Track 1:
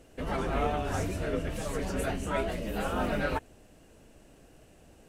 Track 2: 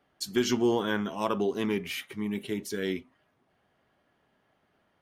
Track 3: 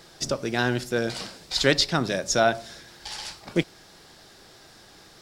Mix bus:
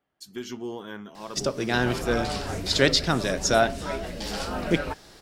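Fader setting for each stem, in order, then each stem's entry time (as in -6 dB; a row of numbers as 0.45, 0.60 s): -1.0, -9.5, 0.0 dB; 1.55, 0.00, 1.15 s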